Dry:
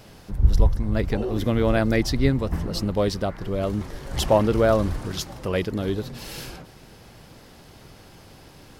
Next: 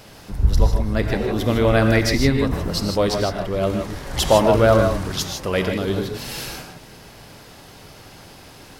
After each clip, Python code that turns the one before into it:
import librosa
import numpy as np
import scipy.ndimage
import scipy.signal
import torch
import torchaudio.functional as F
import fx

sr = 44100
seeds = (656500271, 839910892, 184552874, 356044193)

y = fx.low_shelf(x, sr, hz=450.0, db=-5.5)
y = fx.rev_gated(y, sr, seeds[0], gate_ms=180, shape='rising', drr_db=3.5)
y = F.gain(torch.from_numpy(y), 5.5).numpy()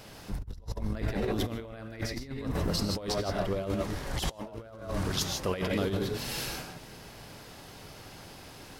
y = fx.over_compress(x, sr, threshold_db=-23.0, ratio=-0.5)
y = F.gain(torch.from_numpy(y), -9.0).numpy()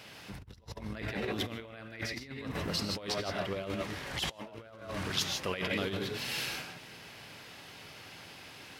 y = scipy.signal.sosfilt(scipy.signal.butter(2, 86.0, 'highpass', fs=sr, output='sos'), x)
y = fx.peak_eq(y, sr, hz=2500.0, db=10.0, octaves=1.7)
y = F.gain(torch.from_numpy(y), -5.5).numpy()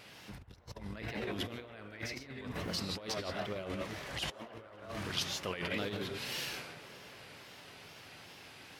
y = fx.wow_flutter(x, sr, seeds[1], rate_hz=2.1, depth_cents=110.0)
y = fx.echo_wet_bandpass(y, sr, ms=278, feedback_pct=76, hz=790.0, wet_db=-14.0)
y = F.gain(torch.from_numpy(y), -3.5).numpy()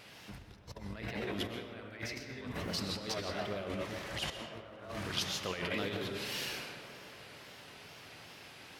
y = fx.rev_freeverb(x, sr, rt60_s=1.3, hf_ratio=0.65, predelay_ms=85, drr_db=7.5)